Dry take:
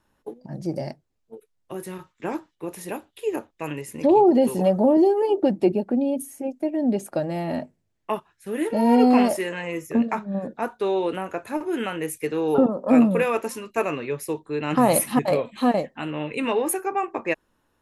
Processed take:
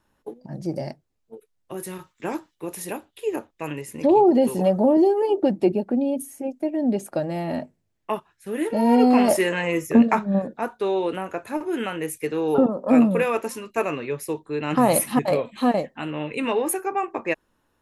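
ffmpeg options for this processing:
ffmpeg -i in.wav -filter_complex "[0:a]asettb=1/sr,asplit=3[link_01][link_02][link_03];[link_01]atrim=end=1.774[link_04];[link_02]atrim=start=1.77:end=2.93,asetpts=PTS-STARTPTS,afade=type=in:duration=0.004:curve=qsin,afade=type=out:start_time=1.156:duration=0.004:curve=qsin,highshelf=frequency=3900:gain=6.5[link_05];[link_03]atrim=start=2.926[link_06];[link_04][link_05]acrossfade=duration=0.004:curve1=hsin:curve2=qsin[link_07];[link_07][link_06]acrossfade=duration=0.004:curve1=qsin:curve2=hsin,asplit=3[link_08][link_09][link_10];[link_08]atrim=end=9.282[link_11];[link_09]atrim=start=9.278:end=10.422,asetpts=PTS-STARTPTS,volume=6dB[link_12];[link_10]atrim=start=10.418[link_13];[link_11][link_12]acrossfade=duration=0.004:curve1=hsin:curve2=hsin[link_14];[link_14][link_13]acrossfade=duration=0.004:curve1=hsin:curve2=hsin" out.wav

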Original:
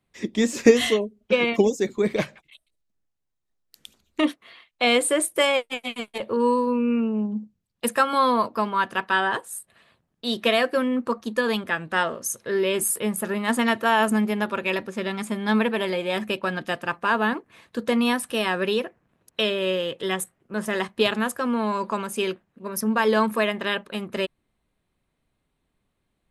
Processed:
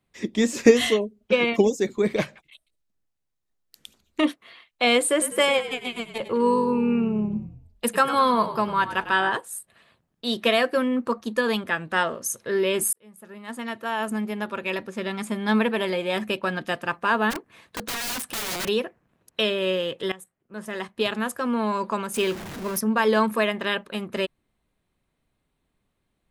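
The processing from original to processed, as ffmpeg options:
ffmpeg -i in.wav -filter_complex "[0:a]asettb=1/sr,asplit=3[link_01][link_02][link_03];[link_01]atrim=end=5.114[link_04];[link_02]atrim=start=5.11:end=9.3,asetpts=PTS-STARTPTS,afade=type=in:duration=0.004:curve=qsin,afade=type=out:start_time=4.186:duration=0.004:curve=qsin,asplit=6[link_05][link_06][link_07][link_08][link_09][link_10];[link_06]adelay=100,afreqshift=-43,volume=-12.5dB[link_11];[link_07]adelay=200,afreqshift=-86,volume=-19.2dB[link_12];[link_08]adelay=300,afreqshift=-129,volume=-26dB[link_13];[link_09]adelay=400,afreqshift=-172,volume=-32.7dB[link_14];[link_10]adelay=500,afreqshift=-215,volume=-39.5dB[link_15];[link_05][link_11][link_12][link_13][link_14][link_15]amix=inputs=6:normalize=0,atrim=end_sample=184779[link_16];[link_03]atrim=start=9.296[link_17];[link_04][link_16]acrossfade=duration=0.004:curve1=hsin:curve2=qsin[link_18];[link_18][link_17]acrossfade=duration=0.004:curve1=qsin:curve2=hsin,asplit=3[link_19][link_20][link_21];[link_19]afade=type=out:start_time=17.3:duration=0.02[link_22];[link_20]aeval=exprs='(mod(16.8*val(0)+1,2)-1)/16.8':channel_layout=same,afade=type=in:start_time=17.3:duration=0.02,afade=type=out:start_time=18.67:duration=0.02[link_23];[link_21]afade=type=in:start_time=18.67:duration=0.02[link_24];[link_22][link_23][link_24]amix=inputs=3:normalize=0,asettb=1/sr,asplit=3[link_25][link_26][link_27];[link_25]atrim=end=22.144[link_28];[link_26]atrim=start=22.14:end=22.79,asetpts=PTS-STARTPTS,afade=type=in:duration=0.004:curve=qsin,afade=type=out:start_time=0.646:duration=0.004:curve=qsin,aeval=exprs='val(0)+0.5*0.0299*sgn(val(0))':channel_layout=same[link_29];[link_27]atrim=start=22.786[link_30];[link_28][link_29]acrossfade=duration=0.004:curve1=hsin:curve2=qsin[link_31];[link_31][link_30]acrossfade=duration=0.004:curve1=qsin:curve2=hsin,asplit=3[link_32][link_33][link_34];[link_32]atrim=end=12.93,asetpts=PTS-STARTPTS,afade=type=out:start_time=12.926:duration=0.004:curve=hsin[link_35];[link_33]atrim=start=12.93:end=20.12,asetpts=PTS-STARTPTS,afade=type=in:duration=2.5,afade=type=out:start_time=7.186:duration=0.004:curve=hsin:silence=0.11885[link_36];[link_34]atrim=start=20.12,asetpts=PTS-STARTPTS,afade=type=in:duration=1.51:silence=0.11885[link_37];[link_35][link_36][link_37]concat=n=3:v=0:a=1" out.wav

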